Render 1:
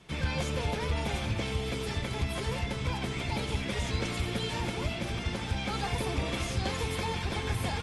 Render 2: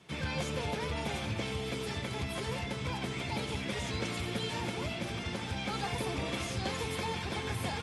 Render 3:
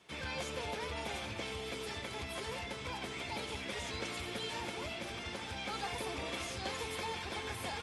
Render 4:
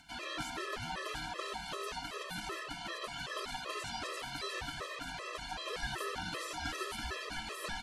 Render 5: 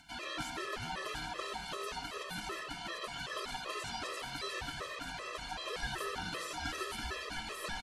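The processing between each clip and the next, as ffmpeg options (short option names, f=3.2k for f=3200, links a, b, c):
-af "highpass=100,volume=-2dB"
-af "equalizer=f=140:t=o:w=1.6:g=-11,volume=-2.5dB"
-af "aeval=exprs='val(0)*sin(2*PI*840*n/s)':c=same,acompressor=mode=upward:threshold=-58dB:ratio=2.5,afftfilt=real='re*gt(sin(2*PI*2.6*pts/sr)*(1-2*mod(floor(b*sr/1024/340),2)),0)':imag='im*gt(sin(2*PI*2.6*pts/sr)*(1-2*mod(floor(b*sr/1024/340),2)),0)':win_size=1024:overlap=0.75,volume=6dB"
-af "aecho=1:1:122|244|366|488:0.106|0.054|0.0276|0.0141"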